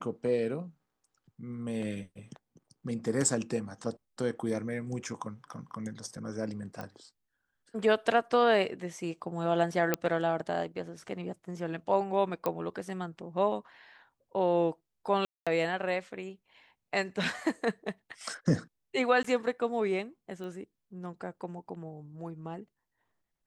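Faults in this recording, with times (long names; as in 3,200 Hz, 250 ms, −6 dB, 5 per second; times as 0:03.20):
0:06.81: click −25 dBFS
0:09.94: click −11 dBFS
0:12.46: click −17 dBFS
0:15.25–0:15.47: drop-out 216 ms
0:19.23–0:19.24: drop-out 14 ms
0:20.44: click −32 dBFS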